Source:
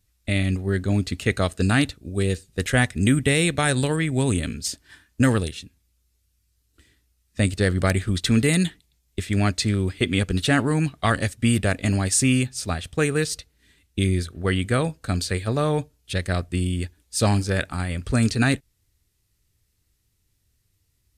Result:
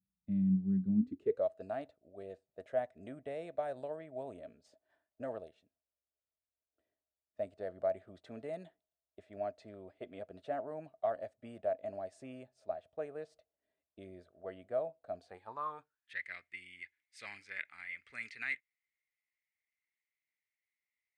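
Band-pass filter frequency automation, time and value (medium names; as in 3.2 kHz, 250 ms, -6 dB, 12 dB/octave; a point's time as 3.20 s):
band-pass filter, Q 13
0.94 s 190 Hz
1.47 s 640 Hz
15.17 s 640 Hz
16.24 s 2.1 kHz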